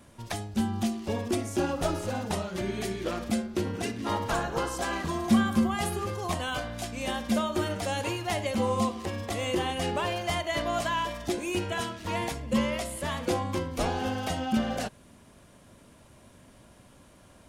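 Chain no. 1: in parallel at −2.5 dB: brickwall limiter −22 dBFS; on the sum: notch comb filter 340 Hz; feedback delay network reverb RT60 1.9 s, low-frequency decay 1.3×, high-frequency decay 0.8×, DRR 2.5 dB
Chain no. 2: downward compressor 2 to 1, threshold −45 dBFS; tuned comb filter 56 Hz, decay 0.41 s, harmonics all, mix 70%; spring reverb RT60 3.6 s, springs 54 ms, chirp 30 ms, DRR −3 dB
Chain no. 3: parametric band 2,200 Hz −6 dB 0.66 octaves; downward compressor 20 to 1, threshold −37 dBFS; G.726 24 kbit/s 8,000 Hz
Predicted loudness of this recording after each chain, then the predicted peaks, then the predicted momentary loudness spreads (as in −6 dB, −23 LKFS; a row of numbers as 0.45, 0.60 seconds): −25.5, −40.0, −42.0 LKFS; −9.5, −25.0, −26.5 dBFS; 5, 13, 15 LU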